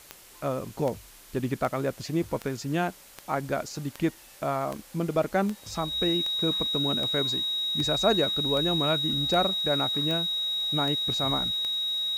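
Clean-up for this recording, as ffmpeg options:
ffmpeg -i in.wav -af "adeclick=threshold=4,bandreject=frequency=3800:width=30,afwtdn=0.0032" out.wav

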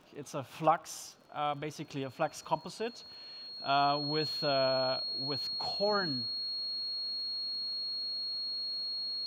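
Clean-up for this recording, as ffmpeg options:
ffmpeg -i in.wav -af "adeclick=threshold=4,bandreject=frequency=4300:width=30" out.wav

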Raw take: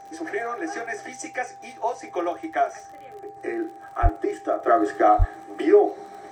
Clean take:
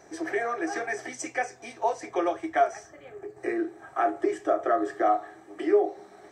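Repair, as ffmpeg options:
ffmpeg -i in.wav -filter_complex "[0:a]adeclick=threshold=4,bandreject=frequency=790:width=30,asplit=3[link_01][link_02][link_03];[link_01]afade=type=out:start_time=4.02:duration=0.02[link_04];[link_02]highpass=frequency=140:width=0.5412,highpass=frequency=140:width=1.3066,afade=type=in:start_time=4.02:duration=0.02,afade=type=out:start_time=4.14:duration=0.02[link_05];[link_03]afade=type=in:start_time=4.14:duration=0.02[link_06];[link_04][link_05][link_06]amix=inputs=3:normalize=0,asplit=3[link_07][link_08][link_09];[link_07]afade=type=out:start_time=5.18:duration=0.02[link_10];[link_08]highpass=frequency=140:width=0.5412,highpass=frequency=140:width=1.3066,afade=type=in:start_time=5.18:duration=0.02,afade=type=out:start_time=5.3:duration=0.02[link_11];[link_09]afade=type=in:start_time=5.3:duration=0.02[link_12];[link_10][link_11][link_12]amix=inputs=3:normalize=0,asetnsamples=nb_out_samples=441:pad=0,asendcmd='4.67 volume volume -6dB',volume=0dB" out.wav

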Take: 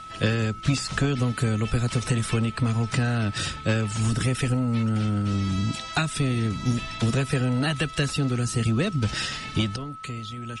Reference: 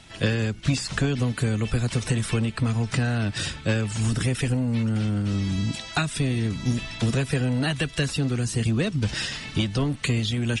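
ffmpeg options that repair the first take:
ffmpeg -i in.wav -af "bandreject=frequency=1300:width=30,asetnsamples=nb_out_samples=441:pad=0,asendcmd='9.76 volume volume 11dB',volume=0dB" out.wav

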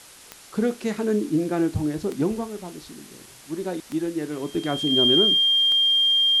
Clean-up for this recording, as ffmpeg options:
ffmpeg -i in.wav -af "adeclick=threshold=4,bandreject=frequency=3200:width=30,afwtdn=0.0056" out.wav

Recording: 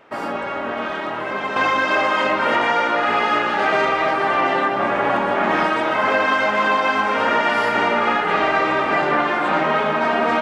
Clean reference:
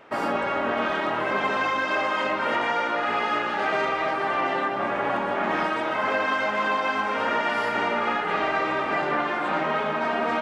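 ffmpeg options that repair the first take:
ffmpeg -i in.wav -af "asetnsamples=nb_out_samples=441:pad=0,asendcmd='1.56 volume volume -6.5dB',volume=0dB" out.wav

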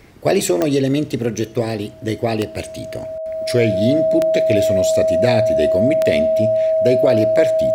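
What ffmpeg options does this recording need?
ffmpeg -i in.wav -af "adeclick=threshold=4,bandreject=frequency=640:width=30" out.wav

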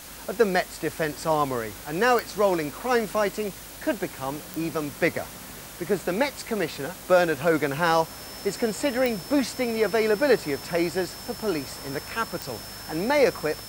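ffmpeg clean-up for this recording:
ffmpeg -i in.wav -af "adeclick=threshold=4,bandreject=frequency=5300:width=30,afwtdn=0.0079" out.wav

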